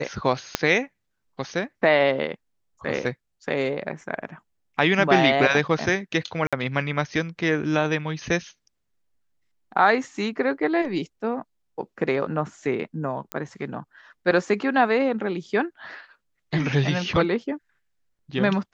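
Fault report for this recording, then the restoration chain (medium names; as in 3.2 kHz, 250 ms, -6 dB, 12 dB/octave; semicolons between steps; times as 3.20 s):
0.55 s: pop -5 dBFS
6.47–6.53 s: dropout 56 ms
13.32 s: pop -12 dBFS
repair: de-click; interpolate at 6.47 s, 56 ms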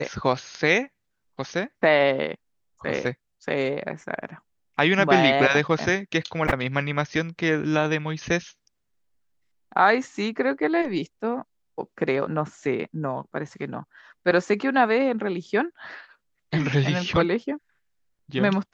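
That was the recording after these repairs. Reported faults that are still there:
0.55 s: pop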